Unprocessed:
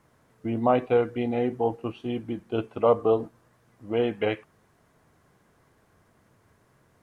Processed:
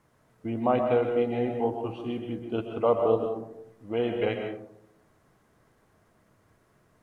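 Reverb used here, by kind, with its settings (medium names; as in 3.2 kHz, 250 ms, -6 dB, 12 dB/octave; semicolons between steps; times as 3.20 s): algorithmic reverb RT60 0.78 s, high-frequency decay 0.3×, pre-delay 90 ms, DRR 4.5 dB; trim -3 dB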